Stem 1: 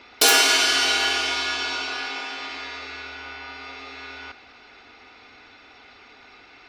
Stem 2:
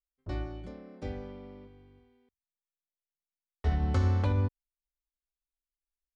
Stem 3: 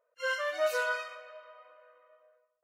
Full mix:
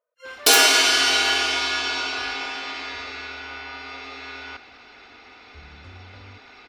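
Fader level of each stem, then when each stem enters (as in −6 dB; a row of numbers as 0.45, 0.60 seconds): +1.5, −19.0, −7.5 decibels; 0.25, 1.90, 0.00 seconds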